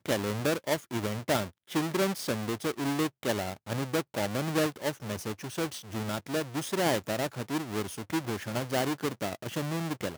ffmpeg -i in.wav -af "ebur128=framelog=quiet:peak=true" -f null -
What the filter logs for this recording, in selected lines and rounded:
Integrated loudness:
  I:         -31.7 LUFS
  Threshold: -41.7 LUFS
Loudness range:
  LRA:         1.8 LU
  Threshold: -51.8 LUFS
  LRA low:   -32.6 LUFS
  LRA high:  -30.9 LUFS
True peak:
  Peak:      -12.0 dBFS